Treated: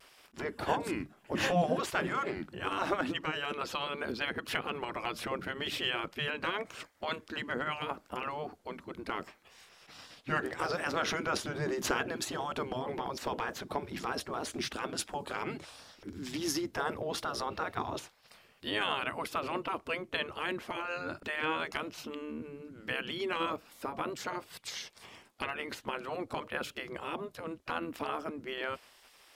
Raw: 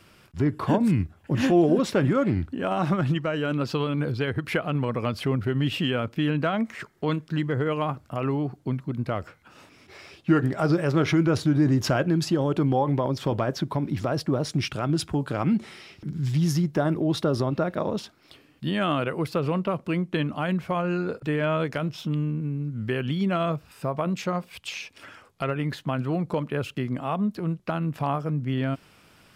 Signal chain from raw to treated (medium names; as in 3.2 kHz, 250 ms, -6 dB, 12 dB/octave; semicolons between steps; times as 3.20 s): spectral gate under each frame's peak -10 dB weak; vibrato 0.76 Hz 28 cents